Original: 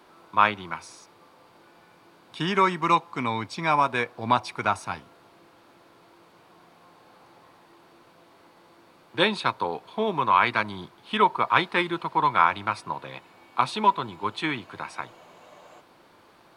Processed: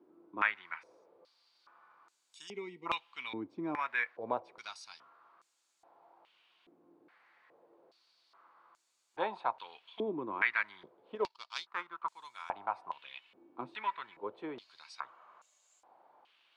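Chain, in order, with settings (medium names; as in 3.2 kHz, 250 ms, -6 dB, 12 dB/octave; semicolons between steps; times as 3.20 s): 2.48–2.86 s: time-frequency box 500–1900 Hz -28 dB; 11.15–12.03 s: power-law waveshaper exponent 1.4; step-sequenced band-pass 2.4 Hz 320–7200 Hz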